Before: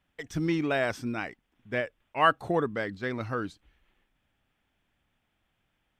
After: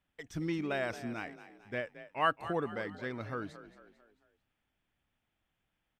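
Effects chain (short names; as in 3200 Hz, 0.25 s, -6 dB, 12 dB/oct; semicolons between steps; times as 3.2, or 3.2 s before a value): frequency-shifting echo 0.223 s, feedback 44%, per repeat +38 Hz, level -14 dB; gain -7 dB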